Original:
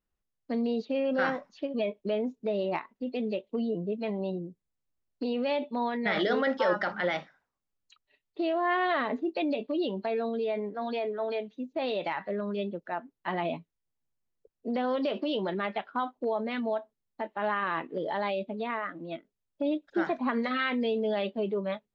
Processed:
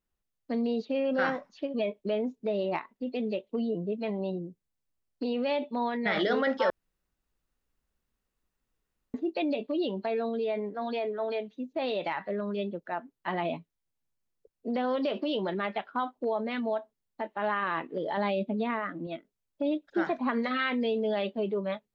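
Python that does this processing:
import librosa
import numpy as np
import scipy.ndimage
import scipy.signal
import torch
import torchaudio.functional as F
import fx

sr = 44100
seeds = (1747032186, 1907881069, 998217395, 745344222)

y = fx.peak_eq(x, sr, hz=210.0, db=7.0, octaves=1.5, at=(18.17, 19.07))
y = fx.edit(y, sr, fx.room_tone_fill(start_s=6.7, length_s=2.44), tone=tone)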